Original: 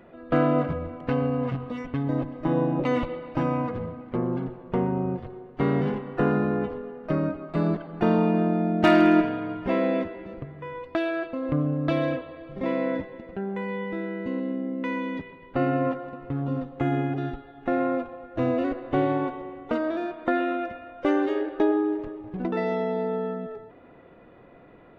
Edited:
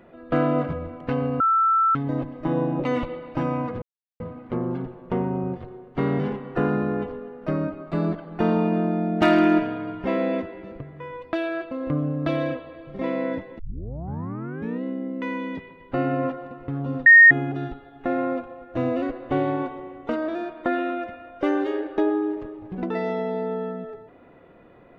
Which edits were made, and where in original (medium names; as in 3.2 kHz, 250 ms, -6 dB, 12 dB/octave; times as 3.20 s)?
1.40–1.95 s: bleep 1.33 kHz -16 dBFS
3.82 s: insert silence 0.38 s
13.21 s: tape start 1.24 s
16.68–16.93 s: bleep 1.85 kHz -6.5 dBFS